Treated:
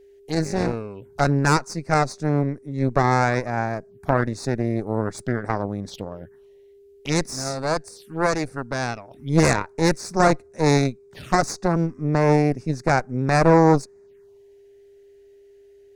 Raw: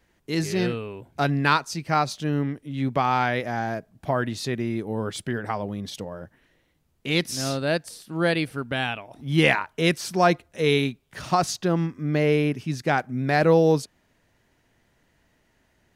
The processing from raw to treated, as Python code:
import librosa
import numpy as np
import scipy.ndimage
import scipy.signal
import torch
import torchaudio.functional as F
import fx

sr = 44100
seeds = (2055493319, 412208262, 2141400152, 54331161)

y = fx.cheby_harmonics(x, sr, harmonics=(6,), levels_db=(-9,), full_scale_db=-4.5)
y = fx.env_phaser(y, sr, low_hz=180.0, high_hz=3100.0, full_db=-26.0)
y = y + 10.0 ** (-48.0 / 20.0) * np.sin(2.0 * np.pi * 400.0 * np.arange(len(y)) / sr)